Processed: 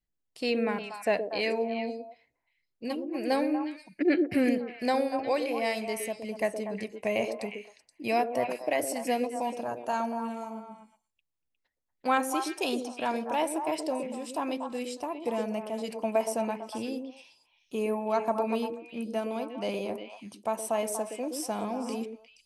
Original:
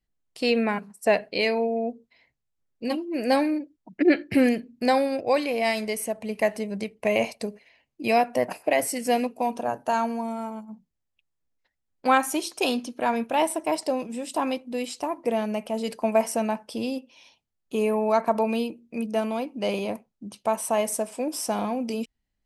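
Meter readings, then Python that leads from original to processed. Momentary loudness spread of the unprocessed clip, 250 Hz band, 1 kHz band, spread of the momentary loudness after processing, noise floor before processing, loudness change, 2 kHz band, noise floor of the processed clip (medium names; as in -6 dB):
10 LU, -5.0 dB, -5.0 dB, 9 LU, -79 dBFS, -5.0 dB, -5.5 dB, -81 dBFS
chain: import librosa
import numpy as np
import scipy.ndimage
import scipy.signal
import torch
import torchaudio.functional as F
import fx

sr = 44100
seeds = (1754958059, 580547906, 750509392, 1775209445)

y = fx.echo_stepped(x, sr, ms=119, hz=370.0, octaves=1.4, feedback_pct=70, wet_db=-2.0)
y = F.gain(torch.from_numpy(y), -6.0).numpy()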